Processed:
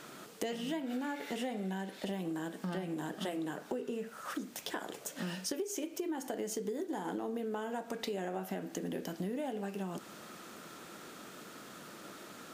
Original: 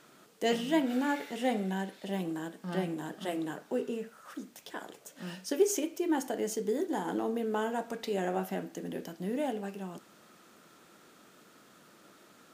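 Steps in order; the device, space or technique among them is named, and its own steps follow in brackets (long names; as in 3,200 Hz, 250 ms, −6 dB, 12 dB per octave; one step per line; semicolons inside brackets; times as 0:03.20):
serial compression, leveller first (downward compressor 2 to 1, threshold −34 dBFS, peak gain reduction 8.5 dB; downward compressor 5 to 1, threshold −44 dBFS, peak gain reduction 15.5 dB)
level +8.5 dB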